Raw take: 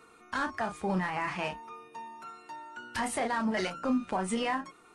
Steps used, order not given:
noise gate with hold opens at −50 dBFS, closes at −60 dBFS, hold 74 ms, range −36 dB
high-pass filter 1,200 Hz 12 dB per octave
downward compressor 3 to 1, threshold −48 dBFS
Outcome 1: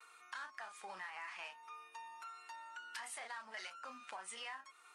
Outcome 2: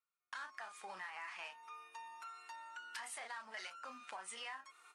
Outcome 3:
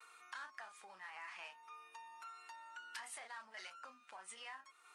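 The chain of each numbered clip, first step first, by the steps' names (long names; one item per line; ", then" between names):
noise gate with hold, then high-pass filter, then downward compressor
high-pass filter, then noise gate with hold, then downward compressor
noise gate with hold, then downward compressor, then high-pass filter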